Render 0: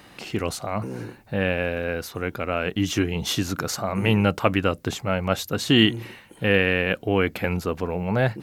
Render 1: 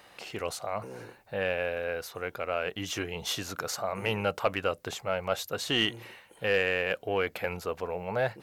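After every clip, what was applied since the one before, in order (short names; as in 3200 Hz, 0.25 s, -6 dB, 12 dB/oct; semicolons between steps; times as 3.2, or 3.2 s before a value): resonant low shelf 380 Hz -8 dB, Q 1.5; soft clip -7.5 dBFS, distortion -22 dB; gain -5.5 dB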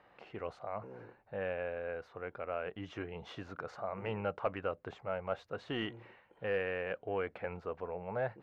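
LPF 1700 Hz 12 dB/oct; gain -6.5 dB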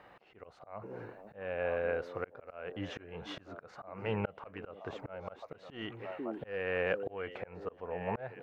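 delay with a stepping band-pass 0.489 s, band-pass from 310 Hz, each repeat 1.4 oct, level -7 dB; auto swell 0.407 s; gain +6.5 dB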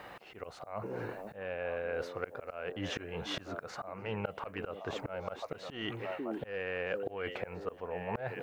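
high shelf 4500 Hz +11 dB; reverse; compressor 4:1, threshold -43 dBFS, peak gain reduction 13.5 dB; reverse; gain +8 dB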